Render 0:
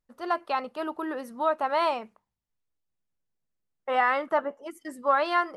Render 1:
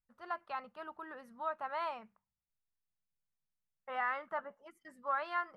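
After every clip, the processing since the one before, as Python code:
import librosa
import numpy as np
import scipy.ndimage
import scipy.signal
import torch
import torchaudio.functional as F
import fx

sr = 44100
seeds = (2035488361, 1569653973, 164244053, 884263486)

y = fx.curve_eq(x, sr, hz=(200.0, 280.0, 1500.0, 3300.0, 7500.0), db=(0, -14, -1, -8, -13))
y = F.gain(torch.from_numpy(y), -7.5).numpy()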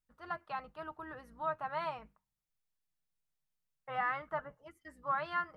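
y = fx.octave_divider(x, sr, octaves=2, level_db=-2.0)
y = y + 0.35 * np.pad(y, (int(6.4 * sr / 1000.0), 0))[:len(y)]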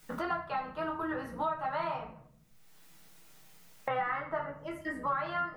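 y = fx.room_shoebox(x, sr, seeds[0], volume_m3=39.0, walls='mixed', distance_m=0.67)
y = fx.band_squash(y, sr, depth_pct=100)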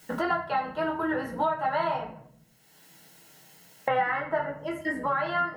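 y = fx.notch_comb(x, sr, f0_hz=1200.0)
y = F.gain(torch.from_numpy(y), 7.5).numpy()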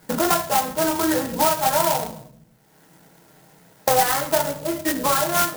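y = np.convolve(x, np.full(9, 1.0 / 9))[:len(x)]
y = fx.clock_jitter(y, sr, seeds[1], jitter_ms=0.1)
y = F.gain(torch.from_numpy(y), 8.0).numpy()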